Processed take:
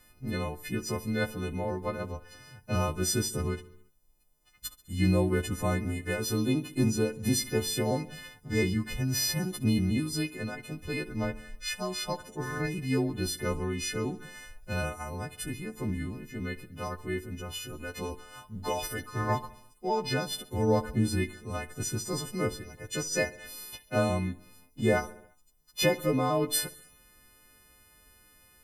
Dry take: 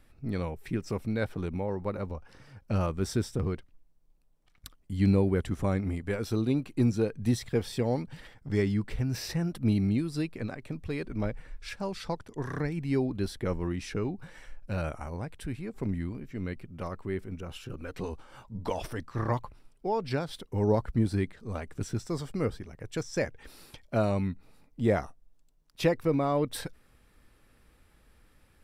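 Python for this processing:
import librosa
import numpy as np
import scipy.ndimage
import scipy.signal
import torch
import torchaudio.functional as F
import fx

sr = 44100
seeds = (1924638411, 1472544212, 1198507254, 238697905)

y = fx.freq_snap(x, sr, grid_st=3)
y = fx.echo_feedback(y, sr, ms=68, feedback_pct=59, wet_db=-18.0)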